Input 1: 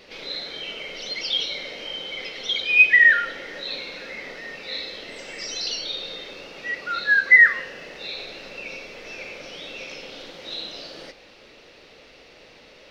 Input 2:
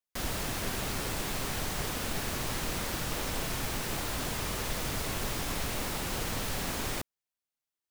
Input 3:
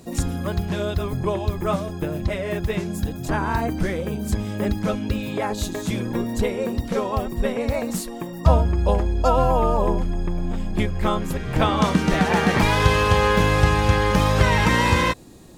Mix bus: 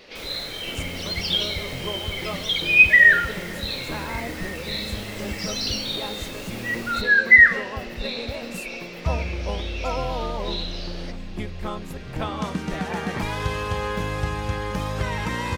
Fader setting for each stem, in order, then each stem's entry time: +1.0, -7.0, -9.0 dB; 0.00, 0.00, 0.60 s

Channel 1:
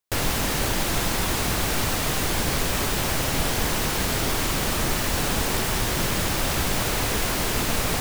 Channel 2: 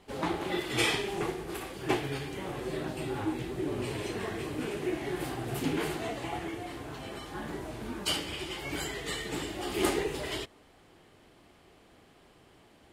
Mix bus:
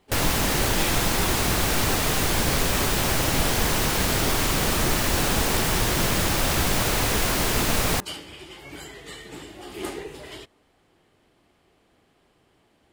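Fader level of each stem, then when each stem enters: +1.5, -4.5 dB; 0.00, 0.00 s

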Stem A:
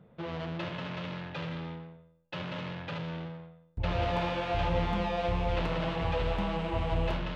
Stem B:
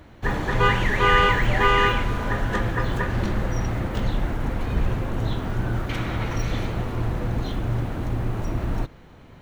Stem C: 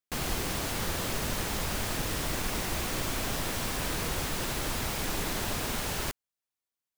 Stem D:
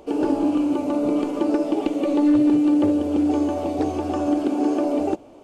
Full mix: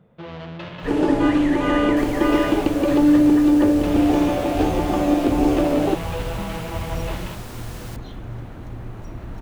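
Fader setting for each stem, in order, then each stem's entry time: +2.0, -8.0, -8.0, +2.5 dB; 0.00, 0.60, 1.85, 0.80 s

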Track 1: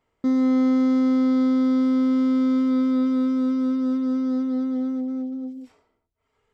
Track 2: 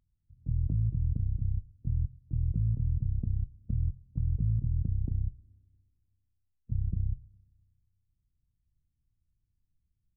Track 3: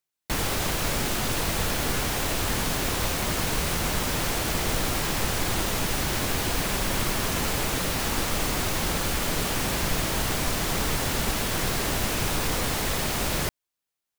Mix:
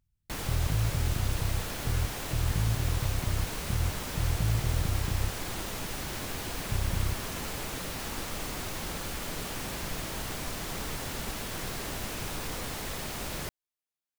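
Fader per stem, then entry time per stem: off, 0.0 dB, -9.5 dB; off, 0.00 s, 0.00 s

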